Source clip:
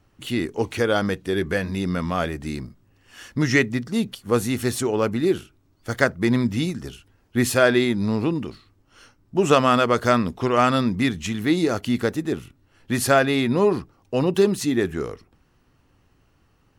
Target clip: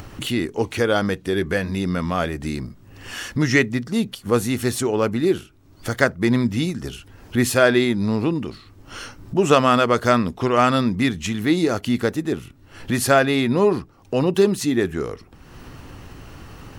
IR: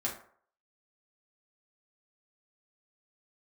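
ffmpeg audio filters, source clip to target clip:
-af "acompressor=mode=upward:threshold=0.0708:ratio=2.5,volume=1.19"

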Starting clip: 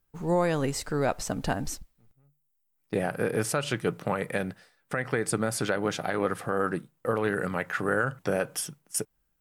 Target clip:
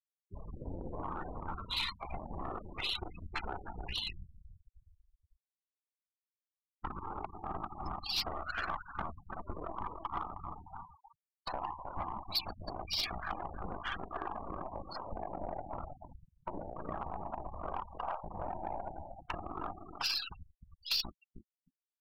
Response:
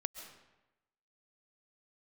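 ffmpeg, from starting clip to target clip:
-filter_complex "[0:a]asetrate=18846,aresample=44100,equalizer=f=980:t=o:w=0.97:g=12.5,asplit=2[s0][s1];[1:a]atrim=start_sample=2205,asetrate=66150,aresample=44100,highshelf=f=9300:g=-2[s2];[s1][s2]afir=irnorm=-1:irlink=0,volume=0.668[s3];[s0][s3]amix=inputs=2:normalize=0,afftfilt=real='hypot(re,im)*cos(2*PI*random(0))':imag='hypot(re,im)*sin(2*PI*random(1))':win_size=512:overlap=0.75,acompressor=threshold=0.00631:ratio=5,asetrate=50951,aresample=44100,atempo=0.865537,asplit=2[s4][s5];[s5]adelay=313,lowpass=f=1000:p=1,volume=0.562,asplit=2[s6][s7];[s7]adelay=313,lowpass=f=1000:p=1,volume=0.27,asplit=2[s8][s9];[s9]adelay=313,lowpass=f=1000:p=1,volume=0.27,asplit=2[s10][s11];[s11]adelay=313,lowpass=f=1000:p=1,volume=0.27[s12];[s4][s6][s8][s10][s12]amix=inputs=5:normalize=0,aeval=exprs='0.0282*(cos(1*acos(clip(val(0)/0.0282,-1,1)))-cos(1*PI/2))+0.00398*(cos(3*acos(clip(val(0)/0.0282,-1,1)))-cos(3*PI/2))+0.000631*(cos(7*acos(clip(val(0)/0.0282,-1,1)))-cos(7*PI/2))+0.00112*(cos(8*acos(clip(val(0)/0.0282,-1,1)))-cos(8*PI/2))':c=same,afftfilt=real='re*gte(hypot(re,im),0.00355)':imag='im*gte(hypot(re,im),0.00355)':win_size=1024:overlap=0.75,equalizer=f=125:t=o:w=1:g=-11,equalizer=f=250:t=o:w=1:g=-9,equalizer=f=500:t=o:w=1:g=-4,equalizer=f=4000:t=o:w=1:g=6,equalizer=f=8000:t=o:w=1:g=8,asoftclip=type=tanh:threshold=0.0126,volume=4.22"

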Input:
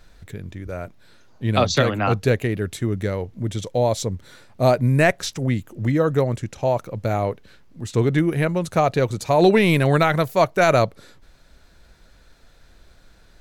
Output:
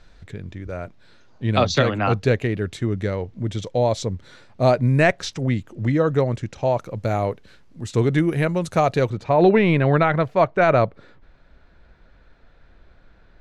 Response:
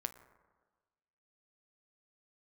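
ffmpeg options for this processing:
-af "asetnsamples=n=441:p=0,asendcmd='6.8 lowpass f 10000;9.1 lowpass f 2400',lowpass=5800"

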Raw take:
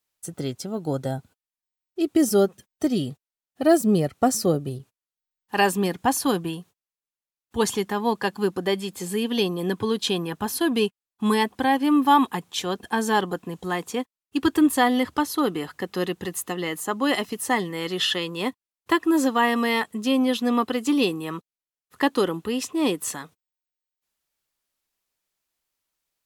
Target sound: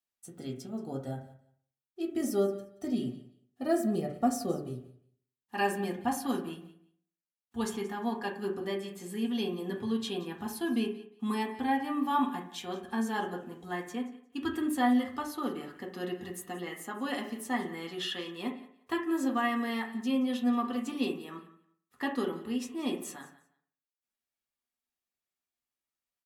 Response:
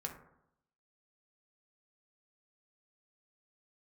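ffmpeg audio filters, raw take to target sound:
-filter_complex "[0:a]aecho=1:1:177|354:0.126|0.0239[s0];[1:a]atrim=start_sample=2205,asetrate=66150,aresample=44100[s1];[s0][s1]afir=irnorm=-1:irlink=0,volume=0.447"

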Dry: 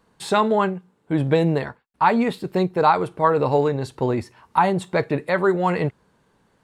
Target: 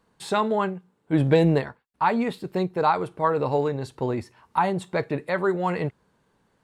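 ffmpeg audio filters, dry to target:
-filter_complex "[0:a]asplit=3[s0][s1][s2];[s0]afade=t=out:st=1.12:d=0.02[s3];[s1]acontrast=34,afade=t=in:st=1.12:d=0.02,afade=t=out:st=1.6:d=0.02[s4];[s2]afade=t=in:st=1.6:d=0.02[s5];[s3][s4][s5]amix=inputs=3:normalize=0,volume=0.596"

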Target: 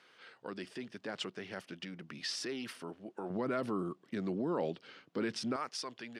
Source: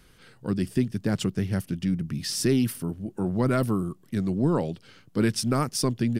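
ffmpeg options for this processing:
-af "alimiter=limit=0.0841:level=0:latency=1:release=34,asetnsamples=n=441:p=0,asendcmd='3.3 highpass f 320;5.56 highpass f 760',highpass=550,lowpass=3900"

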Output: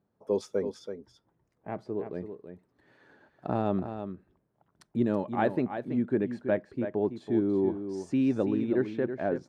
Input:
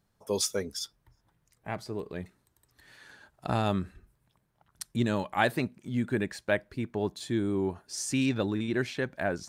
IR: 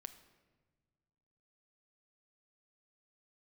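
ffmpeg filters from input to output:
-af "bandpass=f=360:t=q:w=0.84:csg=0,aecho=1:1:329:0.355,volume=1.5"

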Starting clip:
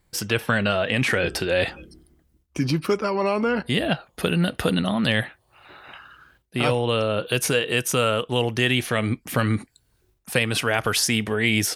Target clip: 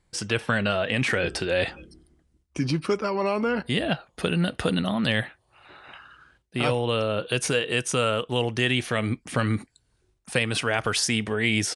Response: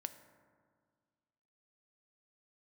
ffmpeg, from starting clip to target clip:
-af "aresample=22050,aresample=44100,volume=0.75"

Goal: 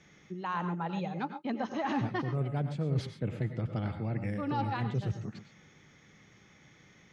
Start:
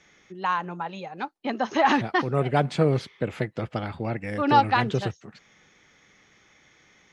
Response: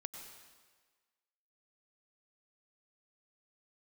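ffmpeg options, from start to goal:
-filter_complex "[0:a]equalizer=f=130:t=o:w=2.3:g=12,areverse,acompressor=threshold=0.0501:ratio=6,areverse[s0];[1:a]atrim=start_sample=2205,atrim=end_sample=6174[s1];[s0][s1]afir=irnorm=-1:irlink=0"

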